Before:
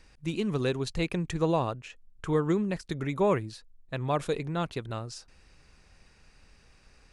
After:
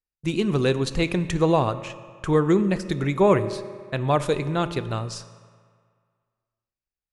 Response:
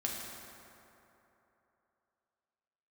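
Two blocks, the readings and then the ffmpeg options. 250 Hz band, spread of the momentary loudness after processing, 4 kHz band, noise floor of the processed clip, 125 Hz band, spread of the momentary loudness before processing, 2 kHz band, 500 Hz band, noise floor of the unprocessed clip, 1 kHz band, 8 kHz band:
+7.0 dB, 14 LU, +7.0 dB, below −85 dBFS, +7.0 dB, 15 LU, +7.0 dB, +7.0 dB, −60 dBFS, +7.0 dB, +7.0 dB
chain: -filter_complex "[0:a]agate=range=-46dB:threshold=-47dB:ratio=16:detection=peak,asplit=2[link_01][link_02];[1:a]atrim=start_sample=2205,asetrate=70560,aresample=44100[link_03];[link_02][link_03]afir=irnorm=-1:irlink=0,volume=-8dB[link_04];[link_01][link_04]amix=inputs=2:normalize=0,volume=5dB"

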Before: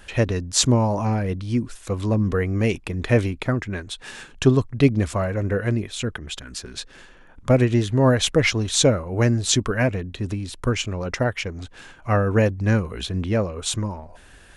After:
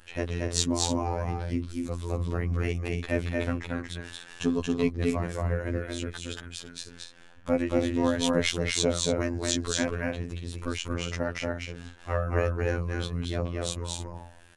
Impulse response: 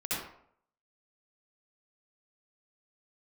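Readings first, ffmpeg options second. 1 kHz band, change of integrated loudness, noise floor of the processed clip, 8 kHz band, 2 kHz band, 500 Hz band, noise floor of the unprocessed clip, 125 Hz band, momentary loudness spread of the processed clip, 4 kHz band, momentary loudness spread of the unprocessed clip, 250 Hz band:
−6.5 dB, −7.5 dB, −50 dBFS, −6.5 dB, −6.5 dB, −7.0 dB, −48 dBFS, −10.0 dB, 13 LU, −6.0 dB, 14 LU, −7.0 dB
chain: -af "aecho=1:1:230.3|282.8:0.794|0.316,afftfilt=real='hypot(re,im)*cos(PI*b)':imag='0':win_size=2048:overlap=0.75,volume=-5.5dB"

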